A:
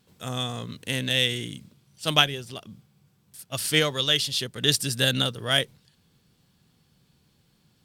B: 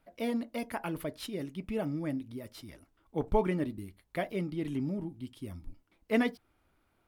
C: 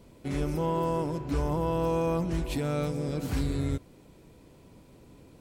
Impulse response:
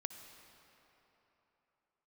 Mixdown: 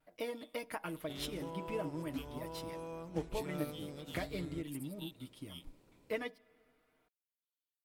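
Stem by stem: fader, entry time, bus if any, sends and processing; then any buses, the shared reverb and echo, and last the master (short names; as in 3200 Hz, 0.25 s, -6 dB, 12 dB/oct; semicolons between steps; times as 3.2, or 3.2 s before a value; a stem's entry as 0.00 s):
-15.0 dB, 0.00 s, no send, differentiator; fixed phaser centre 1700 Hz, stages 6; step phaser 3.1 Hz 750–2700 Hz
+1.5 dB, 0.00 s, send -8.5 dB, comb 6.5 ms, depth 59%; compressor 4:1, threshold -38 dBFS, peak gain reduction 15 dB
-3.5 dB, 0.85 s, no send, compressor 10:1, threshold -32 dBFS, peak gain reduction 9 dB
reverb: on, RT60 3.6 s, pre-delay 54 ms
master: low shelf 260 Hz -6.5 dB; vibrato 0.32 Hz 12 cents; upward expander 1.5:1, over -47 dBFS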